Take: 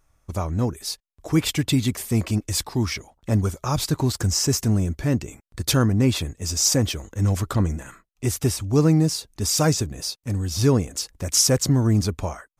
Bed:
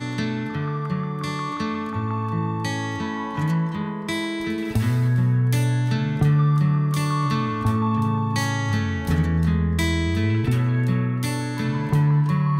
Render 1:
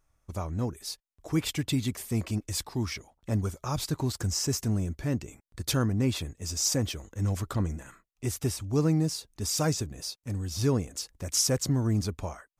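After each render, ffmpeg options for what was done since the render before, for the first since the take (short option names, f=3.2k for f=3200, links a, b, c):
-af "volume=-7.5dB"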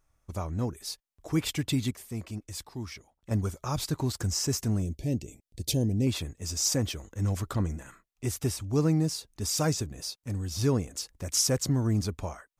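-filter_complex "[0:a]asettb=1/sr,asplit=3[a][b][c];[a]atrim=end=4.824[d];[b]atrim=start=4.82:end=6.07,asetpts=PTS-STARTPTS,afade=t=in:d=0.004:c=qsin,afade=t=out:st=1.246:d=0.004:c=qsin,asuperstop=centerf=1300:order=4:qfactor=0.64[e];[c]atrim=start=6.066[f];[d][e]acrossfade=d=0.004:c1=hsin:c2=qsin[g];[g][f]acrossfade=d=0.004:c1=qsin:c2=hsin,asplit=3[h][i][j];[h]atrim=end=1.912[k];[i]atrim=start=1.908:end=3.312,asetpts=PTS-STARTPTS,volume=-7dB[l];[j]atrim=start=3.308[m];[k][l]acrossfade=d=0.004:c1=hsin:c2=hsin[n];[n][m]acrossfade=d=0.004:c1=hsin:c2=hsin"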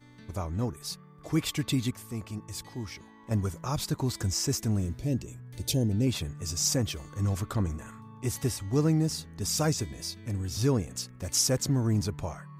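-filter_complex "[1:a]volume=-26dB[a];[0:a][a]amix=inputs=2:normalize=0"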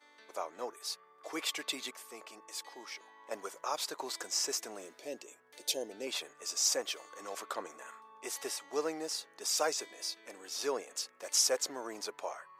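-af "highpass=f=470:w=0.5412,highpass=f=470:w=1.3066,highshelf=f=8.9k:g=-7"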